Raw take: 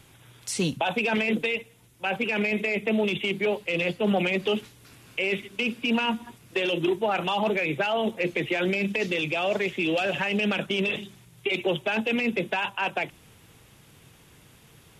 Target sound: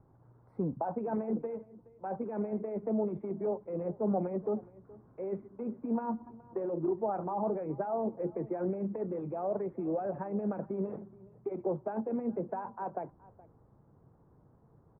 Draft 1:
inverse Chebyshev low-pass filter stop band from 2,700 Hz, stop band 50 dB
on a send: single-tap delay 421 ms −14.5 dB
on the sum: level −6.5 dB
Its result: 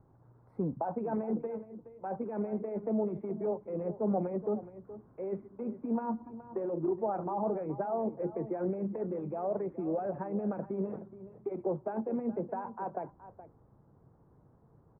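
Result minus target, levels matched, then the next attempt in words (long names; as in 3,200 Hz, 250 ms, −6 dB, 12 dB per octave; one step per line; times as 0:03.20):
echo-to-direct +7 dB
inverse Chebyshev low-pass filter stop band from 2,700 Hz, stop band 50 dB
on a send: single-tap delay 421 ms −21.5 dB
on the sum: level −6.5 dB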